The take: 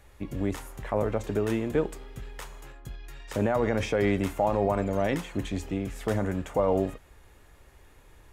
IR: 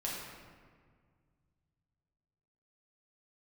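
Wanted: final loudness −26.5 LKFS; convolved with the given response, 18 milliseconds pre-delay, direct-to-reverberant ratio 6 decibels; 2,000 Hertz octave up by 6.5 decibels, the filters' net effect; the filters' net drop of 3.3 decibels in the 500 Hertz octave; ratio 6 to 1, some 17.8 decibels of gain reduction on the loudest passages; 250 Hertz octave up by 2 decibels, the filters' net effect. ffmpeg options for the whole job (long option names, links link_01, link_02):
-filter_complex "[0:a]equalizer=frequency=250:width_type=o:gain=4,equalizer=frequency=500:width_type=o:gain=-5.5,equalizer=frequency=2000:width_type=o:gain=8,acompressor=threshold=-40dB:ratio=6,asplit=2[link_01][link_02];[1:a]atrim=start_sample=2205,adelay=18[link_03];[link_02][link_03]afir=irnorm=-1:irlink=0,volume=-9dB[link_04];[link_01][link_04]amix=inputs=2:normalize=0,volume=16.5dB"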